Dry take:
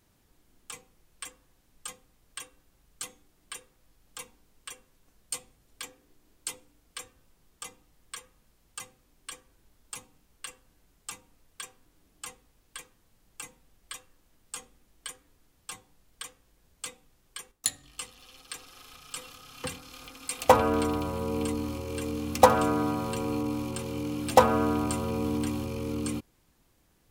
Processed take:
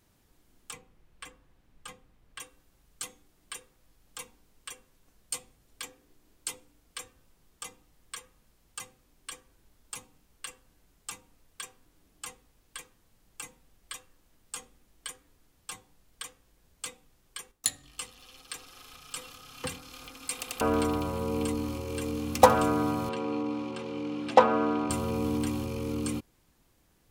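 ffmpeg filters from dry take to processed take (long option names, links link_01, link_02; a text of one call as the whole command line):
ffmpeg -i in.wav -filter_complex "[0:a]asettb=1/sr,asplit=3[link_01][link_02][link_03];[link_01]atrim=end=0.734[link_04];[link_02]atrim=start=0.73:end=2.4,asetpts=PTS-STARTPTS,afade=type=in:duration=0.004:curve=qsin,afade=type=out:start_time=1.666:duration=0.004:curve=qsin,bass=frequency=250:gain=3,treble=frequency=4000:gain=-10[link_05];[link_03]atrim=start=2.396[link_06];[link_04][link_05]acrossfade=duration=0.004:curve1=hsin:curve2=qsin[link_07];[link_07][link_06]acrossfade=duration=0.004:curve1=qsin:curve2=hsin,asettb=1/sr,asplit=3[link_08][link_09][link_10];[link_08]atrim=end=23.094[link_11];[link_09]atrim=start=23.09:end=24.9,asetpts=PTS-STARTPTS,afade=type=in:duration=0.004:curve=qsin,afade=type=out:start_time=1.806:duration=0.004:curve=qsin,highpass=210,lowpass=3700[link_12];[link_10]atrim=start=24.896[link_13];[link_11][link_12]acrossfade=duration=0.004:curve1=hsin:curve2=qsin[link_14];[link_14][link_13]acrossfade=duration=0.004:curve1=qsin:curve2=hsin,asplit=4[link_15][link_16][link_17][link_18];[link_15]atrim=end=20.432[link_19];[link_16]atrim=start=20.338:end=20.432[link_20];[link_17]atrim=start=20.338:end=20.432[link_21];[link_18]atrim=start=20.608[link_22];[link_19][link_20]acrossfade=duration=0.004:curve1=hsin:curve2=hsin[link_23];[link_23][link_21]acrossfade=duration=0.004:curve1=hsin:curve2=hsin[link_24];[link_24][link_22]acrossfade=duration=0.004:curve1=hsin:curve2=hsin" out.wav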